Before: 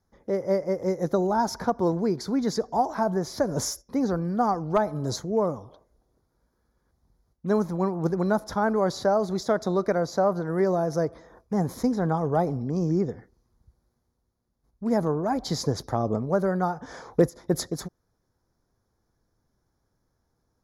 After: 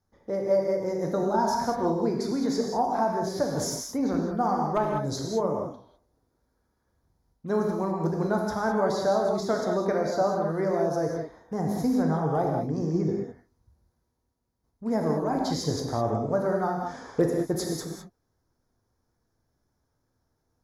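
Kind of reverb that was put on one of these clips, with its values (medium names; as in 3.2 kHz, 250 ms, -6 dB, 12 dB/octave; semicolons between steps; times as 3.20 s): gated-style reverb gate 230 ms flat, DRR -0.5 dB; trim -4 dB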